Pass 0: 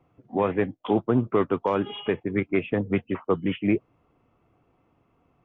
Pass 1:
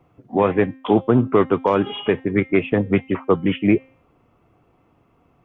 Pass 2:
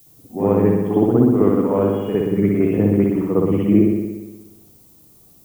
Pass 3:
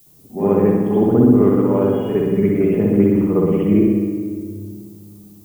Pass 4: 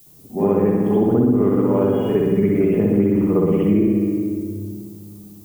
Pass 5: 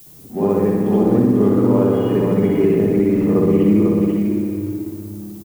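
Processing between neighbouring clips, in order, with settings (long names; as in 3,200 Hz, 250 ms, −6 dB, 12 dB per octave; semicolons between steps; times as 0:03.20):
hum removal 263.9 Hz, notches 28; level +6.5 dB
tilt shelving filter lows +9 dB, about 840 Hz; spring reverb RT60 1.2 s, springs 59 ms, chirp 75 ms, DRR −9.5 dB; background noise violet −37 dBFS; level −14 dB
rectangular room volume 3,500 cubic metres, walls mixed, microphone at 1.3 metres; level −1 dB
downward compressor 4 to 1, threshold −15 dBFS, peak gain reduction 7.5 dB; level +2 dB
mu-law and A-law mismatch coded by mu; on a send: single-tap delay 495 ms −4.5 dB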